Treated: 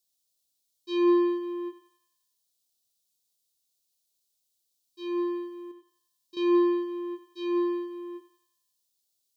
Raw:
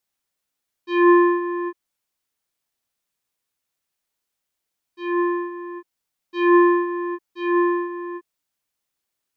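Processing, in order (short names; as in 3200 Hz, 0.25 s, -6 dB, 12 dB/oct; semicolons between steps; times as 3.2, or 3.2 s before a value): EQ curve 630 Hz 0 dB, 1700 Hz -17 dB, 3900 Hz +10 dB; 5.71–6.37 compressor, threshold -41 dBFS, peak gain reduction 10 dB; thinning echo 91 ms, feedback 58%, high-pass 730 Hz, level -10 dB; gain -6 dB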